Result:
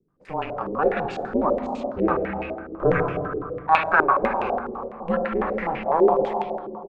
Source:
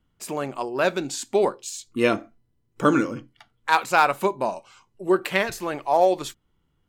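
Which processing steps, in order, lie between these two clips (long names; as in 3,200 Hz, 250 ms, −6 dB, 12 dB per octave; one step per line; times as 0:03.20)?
ring modulation 160 Hz
far-end echo of a speakerphone 370 ms, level −15 dB
on a send at −3 dB: convolution reverb RT60 2.5 s, pre-delay 4 ms
on the sum: low-pass on a step sequencer 12 Hz 390–2,600 Hz
level −2.5 dB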